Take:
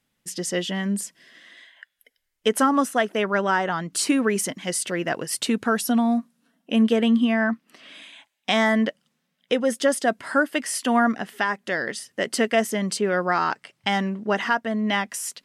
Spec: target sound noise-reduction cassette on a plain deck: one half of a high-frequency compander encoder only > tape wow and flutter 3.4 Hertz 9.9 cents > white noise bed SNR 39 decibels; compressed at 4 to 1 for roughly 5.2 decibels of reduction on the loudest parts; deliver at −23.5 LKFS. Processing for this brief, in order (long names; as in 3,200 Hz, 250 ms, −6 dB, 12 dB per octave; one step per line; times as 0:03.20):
downward compressor 4 to 1, threshold −21 dBFS
one half of a high-frequency compander encoder only
tape wow and flutter 3.4 Hz 9.9 cents
white noise bed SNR 39 dB
level +3 dB